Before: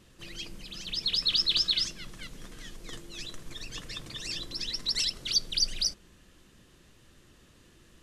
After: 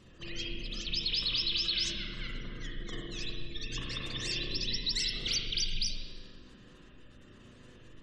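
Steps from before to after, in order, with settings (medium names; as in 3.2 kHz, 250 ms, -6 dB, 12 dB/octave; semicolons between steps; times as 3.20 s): spectral gate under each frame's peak -25 dB strong; peak limiter -24 dBFS, peak gain reduction 9 dB; spring tank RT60 1.4 s, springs 32/40/50 ms, chirp 80 ms, DRR -2.5 dB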